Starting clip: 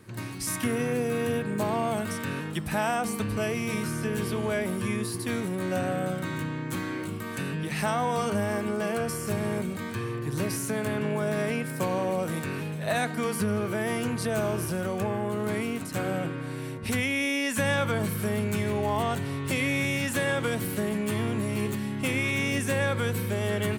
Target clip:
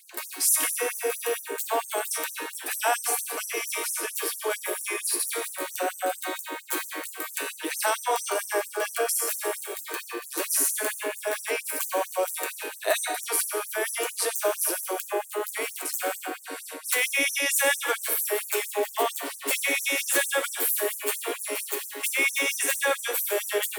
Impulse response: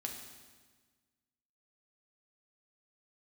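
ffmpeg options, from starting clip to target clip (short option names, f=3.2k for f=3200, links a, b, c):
-filter_complex "[0:a]asplit=2[a][b];[b]aemphasis=mode=production:type=50fm[c];[1:a]atrim=start_sample=2205[d];[c][d]afir=irnorm=-1:irlink=0,volume=0.5dB[e];[a][e]amix=inputs=2:normalize=0,afftfilt=real='re*gte(b*sr/1024,270*pow(5900/270,0.5+0.5*sin(2*PI*4.4*pts/sr)))':imag='im*gte(b*sr/1024,270*pow(5900/270,0.5+0.5*sin(2*PI*4.4*pts/sr)))':win_size=1024:overlap=0.75"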